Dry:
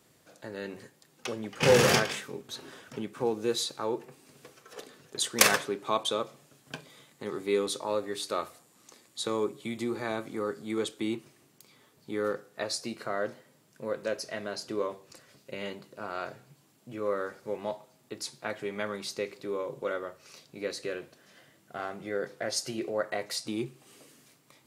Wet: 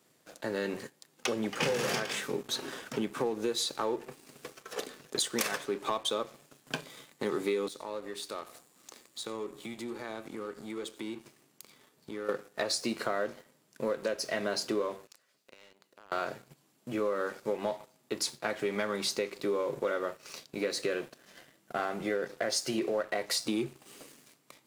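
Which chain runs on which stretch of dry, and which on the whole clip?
0:07.68–0:12.29: downward compressor 2.5 to 1, threshold −50 dBFS + single-tap delay 89 ms −16.5 dB
0:15.07–0:16.12: mu-law and A-law mismatch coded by A + low-shelf EQ 360 Hz −11 dB + downward compressor 5 to 1, threshold −57 dBFS
whole clip: high-pass filter 150 Hz 12 dB per octave; downward compressor 20 to 1, threshold −34 dBFS; leveller curve on the samples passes 2

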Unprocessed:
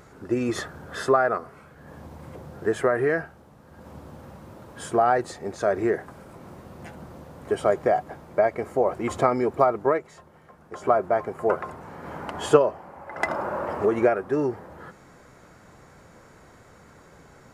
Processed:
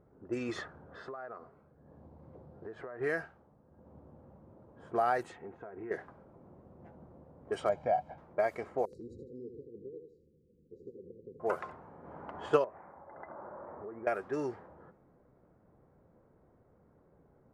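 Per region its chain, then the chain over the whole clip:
0:00.94–0:03.01: parametric band 4,400 Hz +9 dB 0.79 octaves + downward compressor 10 to 1, threshold −29 dBFS + one half of a high-frequency compander decoder only
0:05.23–0:05.91: high shelf with overshoot 3,600 Hz −7 dB, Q 3 + downward compressor 8 to 1, threshold −28 dBFS + notch comb filter 590 Hz
0:07.69–0:08.18: low-pass filter 2,200 Hz + parametric band 1,500 Hz −10 dB 0.94 octaves + comb filter 1.3 ms, depth 72%
0:08.85–0:11.40: downward compressor 4 to 1, threshold −31 dBFS + linear-phase brick-wall band-stop 530–3,800 Hz + repeating echo 81 ms, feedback 32%, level −6.5 dB
0:12.64–0:14.07: Butterworth low-pass 2,200 Hz 48 dB per octave + downward compressor 3 to 1, threshold −34 dBFS
whole clip: low-shelf EQ 410 Hz −4.5 dB; low-pass that shuts in the quiet parts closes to 490 Hz, open at −20 dBFS; high-shelf EQ 3,800 Hz +9.5 dB; level −8.5 dB

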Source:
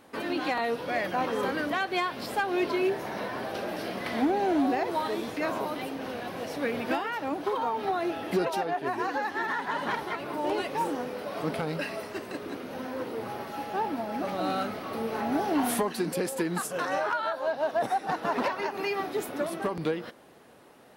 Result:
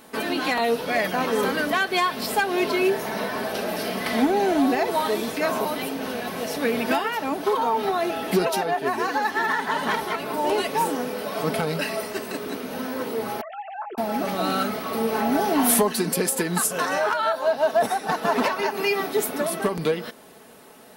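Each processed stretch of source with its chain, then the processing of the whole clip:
0:13.41–0:13.98: three sine waves on the formant tracks + downward compressor 12 to 1, threshold −36 dBFS
whole clip: high-shelf EQ 5,700 Hz +10 dB; comb filter 4.6 ms, depth 44%; level +5 dB

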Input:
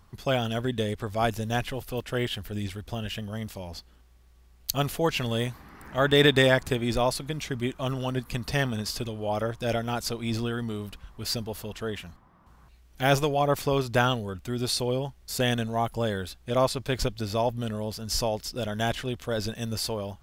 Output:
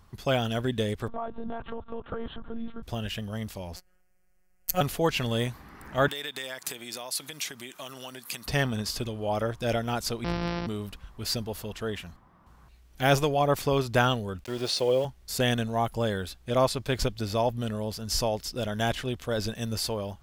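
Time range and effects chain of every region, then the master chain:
0:01.08–0:02.83: high shelf with overshoot 1,600 Hz −9.5 dB, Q 3 + one-pitch LPC vocoder at 8 kHz 230 Hz + downward compressor 16 to 1, threshold −28 dBFS
0:03.76–0:04.81: phases set to zero 182 Hz + phaser with its sweep stopped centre 1,000 Hz, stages 6 + leveller curve on the samples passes 2
0:06.08–0:08.46: high-pass filter 140 Hz + downward compressor, threshold −34 dBFS + spectral tilt +3.5 dB per octave
0:10.24–0:10.67: samples sorted by size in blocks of 256 samples + Chebyshev low-pass filter 5,700 Hz, order 10 + hard clipping −19 dBFS
0:14.44–0:15.05: loudspeaker in its box 170–8,600 Hz, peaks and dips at 240 Hz −5 dB, 540 Hz +9 dB, 2,900 Hz +3 dB, 7,900 Hz −8 dB + centre clipping without the shift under −39.5 dBFS
whole clip: no processing

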